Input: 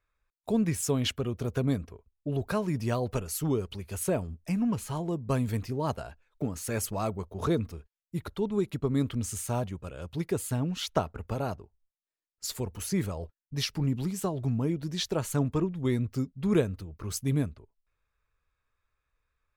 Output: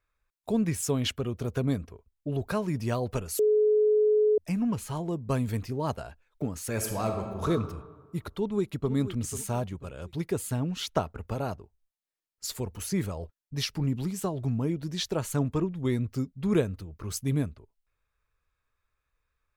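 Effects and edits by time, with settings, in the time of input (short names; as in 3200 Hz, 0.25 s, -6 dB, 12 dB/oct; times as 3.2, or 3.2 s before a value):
3.39–4.38 bleep 425 Hz -19 dBFS
6.73–7.49 reverb throw, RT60 1.4 s, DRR 3 dB
8.31–8.92 echo throw 0.49 s, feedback 35%, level -12 dB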